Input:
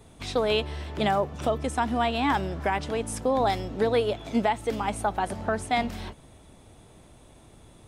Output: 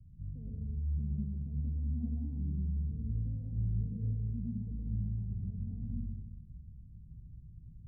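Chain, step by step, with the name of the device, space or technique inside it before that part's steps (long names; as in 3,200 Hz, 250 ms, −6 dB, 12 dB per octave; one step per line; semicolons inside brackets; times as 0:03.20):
club heard from the street (brickwall limiter −19 dBFS, peak gain reduction 7 dB; low-pass filter 150 Hz 24 dB per octave; convolution reverb RT60 0.65 s, pre-delay 108 ms, DRR −1.5 dB)
0:02.00–0:02.43: parametric band 1,100 Hz +13 dB → +5 dB 2.8 octaves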